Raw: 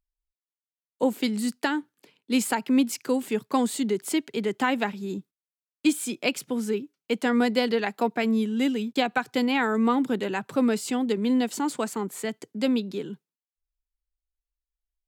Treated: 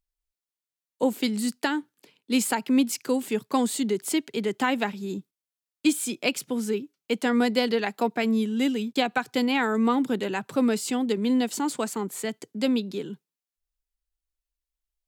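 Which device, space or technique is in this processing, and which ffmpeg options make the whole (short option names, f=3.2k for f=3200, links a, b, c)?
exciter from parts: -filter_complex "[0:a]asplit=2[a][b];[b]highpass=2.3k,asoftclip=type=tanh:threshold=-21.5dB,volume=-9dB[c];[a][c]amix=inputs=2:normalize=0"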